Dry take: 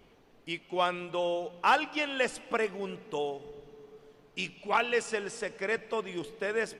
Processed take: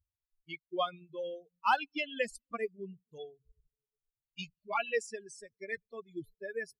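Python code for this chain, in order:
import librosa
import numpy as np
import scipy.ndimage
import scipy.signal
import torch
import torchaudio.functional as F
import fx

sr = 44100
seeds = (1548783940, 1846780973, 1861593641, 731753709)

y = fx.bin_expand(x, sr, power=3.0)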